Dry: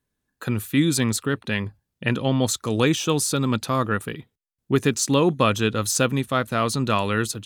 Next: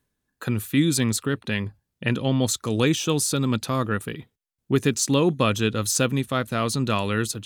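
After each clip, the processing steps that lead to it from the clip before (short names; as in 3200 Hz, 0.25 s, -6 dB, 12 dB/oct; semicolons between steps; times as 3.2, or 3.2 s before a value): dynamic EQ 1000 Hz, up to -4 dB, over -33 dBFS, Q 0.71; reverse; upward compressor, threshold -41 dBFS; reverse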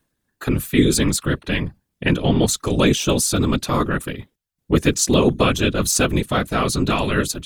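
whisperiser; gain +4.5 dB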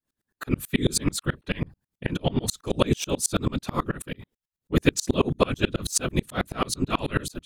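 dB-ramp tremolo swelling 9.2 Hz, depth 32 dB; gain +1 dB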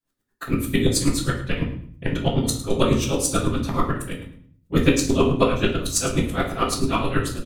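feedback echo 0.106 s, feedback 22%, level -13.5 dB; shoebox room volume 52 m³, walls mixed, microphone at 0.72 m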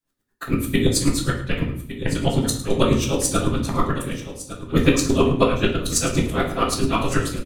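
echo 1.159 s -13.5 dB; gain +1 dB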